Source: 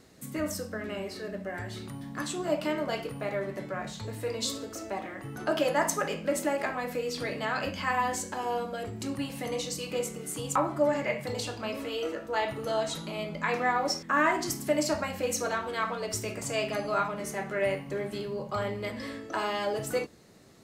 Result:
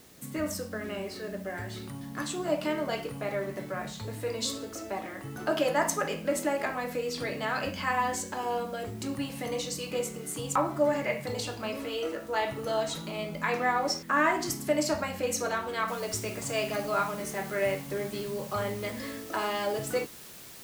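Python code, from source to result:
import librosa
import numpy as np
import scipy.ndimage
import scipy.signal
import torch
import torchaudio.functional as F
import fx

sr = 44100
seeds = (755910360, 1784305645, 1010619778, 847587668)

y = fx.noise_floor_step(x, sr, seeds[0], at_s=15.88, before_db=-58, after_db=-48, tilt_db=0.0)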